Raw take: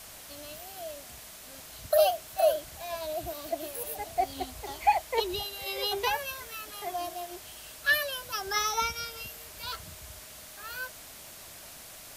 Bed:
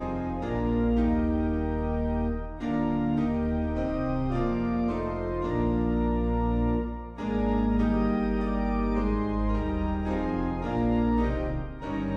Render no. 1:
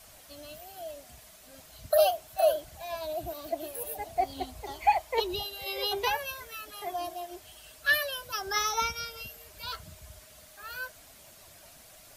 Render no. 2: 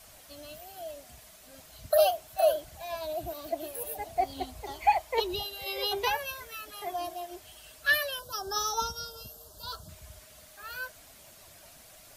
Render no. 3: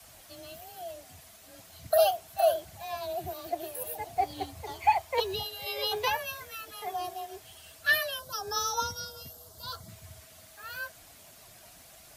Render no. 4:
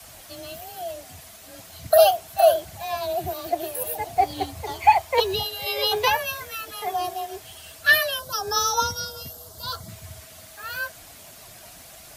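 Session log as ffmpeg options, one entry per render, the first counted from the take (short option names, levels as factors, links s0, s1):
-af "afftdn=nr=8:nf=-47"
-filter_complex "[0:a]asettb=1/sr,asplit=3[s0][s1][s2];[s0]atrim=end=8.194[s3];[s1]atrim=start=8.19:end=9.89,asetpts=PTS-STARTPTS,afade=t=in:d=0.004:c=qsin,afade=t=out:st=1.696:d=0.004:c=qsin,asuperstop=centerf=2200:order=4:qfactor=0.99[s4];[s2]atrim=start=9.886[s5];[s3][s4]acrossfade=d=0.004:c1=hsin:c2=qsin[s6];[s6][s5]acrossfade=d=0.004:c1=qsin:c2=hsin"
-filter_complex "[0:a]afreqshift=24,acrossover=split=300[s0][s1];[s0]acrusher=samples=21:mix=1:aa=0.000001[s2];[s2][s1]amix=inputs=2:normalize=0"
-af "volume=2.51"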